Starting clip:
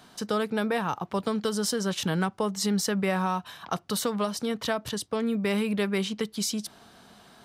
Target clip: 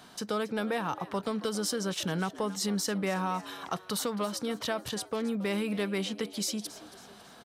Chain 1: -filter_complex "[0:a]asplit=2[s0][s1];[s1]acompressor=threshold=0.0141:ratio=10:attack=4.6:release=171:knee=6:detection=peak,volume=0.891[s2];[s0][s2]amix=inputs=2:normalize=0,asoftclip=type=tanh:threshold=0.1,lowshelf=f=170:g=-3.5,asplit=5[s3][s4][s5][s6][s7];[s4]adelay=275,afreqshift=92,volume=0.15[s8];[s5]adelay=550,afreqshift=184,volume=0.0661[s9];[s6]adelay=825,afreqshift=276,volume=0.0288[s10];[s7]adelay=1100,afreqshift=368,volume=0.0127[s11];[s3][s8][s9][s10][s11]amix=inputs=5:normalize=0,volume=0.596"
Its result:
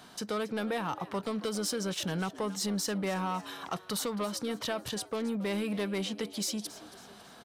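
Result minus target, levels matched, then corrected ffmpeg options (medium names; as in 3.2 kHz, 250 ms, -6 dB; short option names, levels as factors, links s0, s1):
saturation: distortion +12 dB
-filter_complex "[0:a]asplit=2[s0][s1];[s1]acompressor=threshold=0.0141:ratio=10:attack=4.6:release=171:knee=6:detection=peak,volume=0.891[s2];[s0][s2]amix=inputs=2:normalize=0,asoftclip=type=tanh:threshold=0.251,lowshelf=f=170:g=-3.5,asplit=5[s3][s4][s5][s6][s7];[s4]adelay=275,afreqshift=92,volume=0.15[s8];[s5]adelay=550,afreqshift=184,volume=0.0661[s9];[s6]adelay=825,afreqshift=276,volume=0.0288[s10];[s7]adelay=1100,afreqshift=368,volume=0.0127[s11];[s3][s8][s9][s10][s11]amix=inputs=5:normalize=0,volume=0.596"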